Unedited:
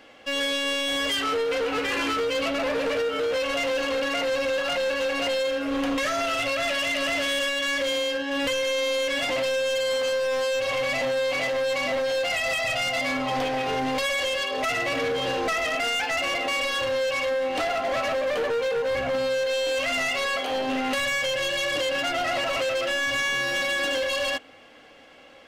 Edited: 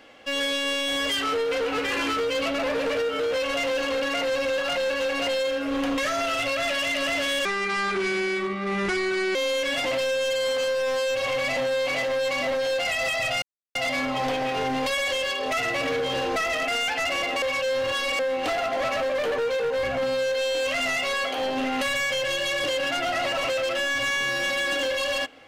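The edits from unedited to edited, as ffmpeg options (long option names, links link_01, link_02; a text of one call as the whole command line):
ffmpeg -i in.wav -filter_complex "[0:a]asplit=6[link_01][link_02][link_03][link_04][link_05][link_06];[link_01]atrim=end=7.454[link_07];[link_02]atrim=start=7.45:end=8.8,asetpts=PTS-STARTPTS,asetrate=31311,aresample=44100,atrim=end_sample=83852,asetpts=PTS-STARTPTS[link_08];[link_03]atrim=start=8.796:end=12.87,asetpts=PTS-STARTPTS,afade=type=out:start_time=4.07:duration=0.004:curve=hsin,apad=pad_dur=0.33[link_09];[link_04]atrim=start=12.87:end=16.542,asetpts=PTS-STARTPTS,afade=type=in:duration=0.004:curve=hsin[link_10];[link_05]atrim=start=16.538:end=17.312,asetpts=PTS-STARTPTS,areverse[link_11];[link_06]atrim=start=17.308[link_12];[link_07][link_08]acrossfade=duration=0.004:curve1=hsin:curve2=hsin[link_13];[link_09][link_10]concat=n=2:v=0:a=1[link_14];[link_13][link_14]acrossfade=duration=0.004:curve1=hsin:curve2=hsin[link_15];[link_15][link_11]acrossfade=duration=0.004:curve1=hsin:curve2=hsin[link_16];[link_16][link_12]acrossfade=duration=0.004:curve1=hsin:curve2=hsin" out.wav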